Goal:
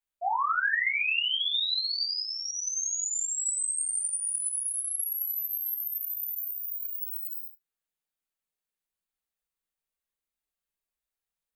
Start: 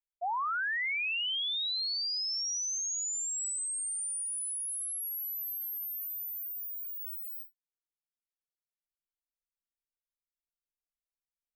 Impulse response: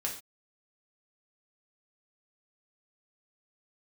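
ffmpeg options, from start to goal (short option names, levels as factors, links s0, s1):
-filter_complex "[0:a]equalizer=f=5500:w=4.1:g=-6.5[s0];[1:a]atrim=start_sample=2205,afade=t=out:st=0.15:d=0.01,atrim=end_sample=7056[s1];[s0][s1]afir=irnorm=-1:irlink=0,volume=1.33"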